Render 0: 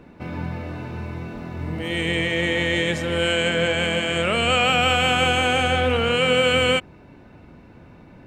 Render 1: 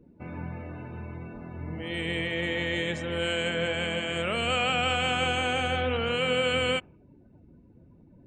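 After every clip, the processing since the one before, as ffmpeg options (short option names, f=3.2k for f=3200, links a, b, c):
-af "afftdn=nr=20:nf=-43,volume=-7.5dB"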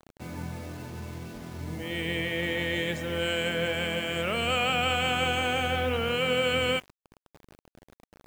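-af "acrusher=bits=7:mix=0:aa=0.000001"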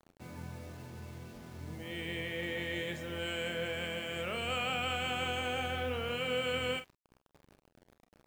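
-af "aecho=1:1:32|46:0.237|0.237,volume=-8.5dB"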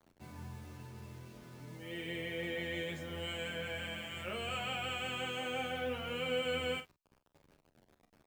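-filter_complex "[0:a]asplit=2[a][b];[b]adelay=10.4,afreqshift=-0.27[c];[a][c]amix=inputs=2:normalize=1"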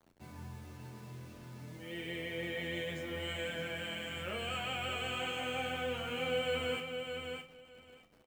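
-af "aecho=1:1:615|1230|1845:0.501|0.0802|0.0128"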